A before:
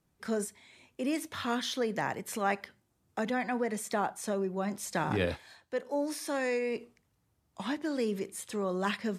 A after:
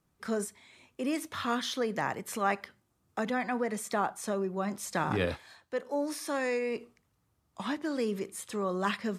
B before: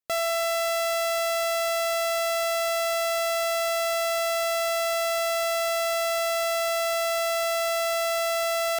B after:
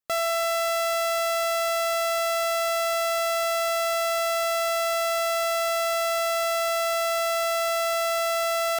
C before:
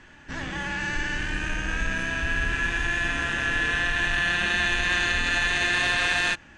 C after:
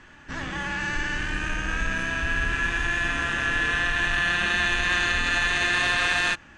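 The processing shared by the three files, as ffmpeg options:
-af "equalizer=f=1.2k:t=o:w=0.37:g=5"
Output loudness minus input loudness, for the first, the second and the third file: +0.5, +0.5, +0.5 LU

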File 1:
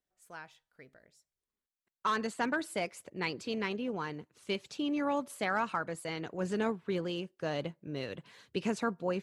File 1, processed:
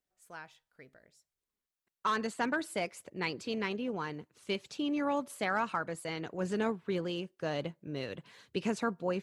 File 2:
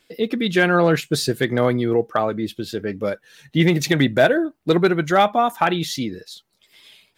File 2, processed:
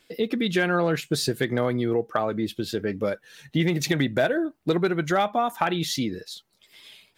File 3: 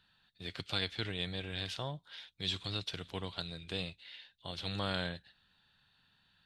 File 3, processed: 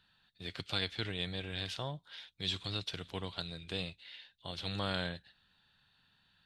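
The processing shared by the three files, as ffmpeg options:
-af "acompressor=threshold=-22dB:ratio=2.5"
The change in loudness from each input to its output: 0.0, -5.5, 0.0 LU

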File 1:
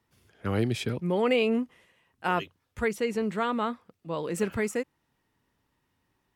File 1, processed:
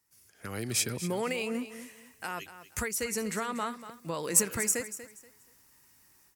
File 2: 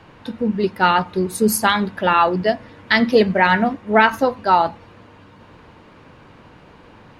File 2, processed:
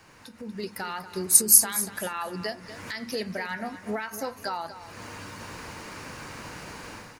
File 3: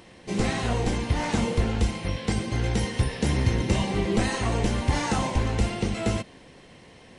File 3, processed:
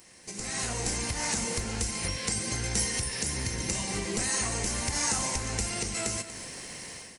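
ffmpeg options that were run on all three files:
-filter_complex "[0:a]equalizer=f=2.1k:w=0.7:g=8,acompressor=threshold=-34dB:ratio=3,alimiter=level_in=0.5dB:limit=-24dB:level=0:latency=1:release=276,volume=-0.5dB,dynaudnorm=f=330:g=3:m=14.5dB,aexciter=amount=12.1:drive=1.8:freq=4.9k,asplit=2[a][b];[b]aecho=0:1:239|478|717:0.224|0.056|0.014[c];[a][c]amix=inputs=2:normalize=0,volume=-12.5dB"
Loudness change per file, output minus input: -2.0, -6.5, -3.5 LU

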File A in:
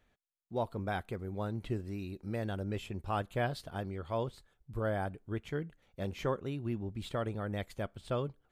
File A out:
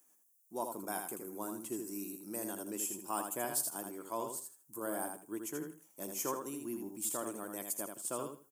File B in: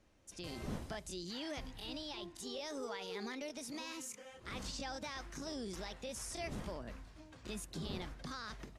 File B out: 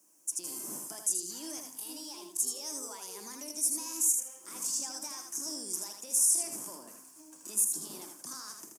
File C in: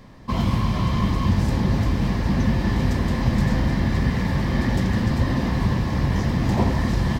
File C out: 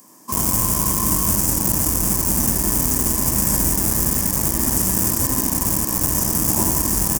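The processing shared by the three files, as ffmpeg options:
-filter_complex "[0:a]equalizer=f=100:t=o:w=0.33:g=-4,equalizer=f=315:t=o:w=0.33:g=9,equalizer=f=500:t=o:w=0.33:g=-3,equalizer=f=1k:t=o:w=0.33:g=8,equalizer=f=2k:t=o:w=0.33:g=-5,aecho=1:1:80|160|240:0.531|0.117|0.0257,acrossover=split=180[a][b];[a]acrusher=bits=3:mix=0:aa=0.000001[c];[c][b]amix=inputs=2:normalize=0,aexciter=amount=12:drive=9.6:freq=6.1k,volume=-6dB"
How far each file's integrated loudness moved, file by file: -1.5, +12.5, +5.0 LU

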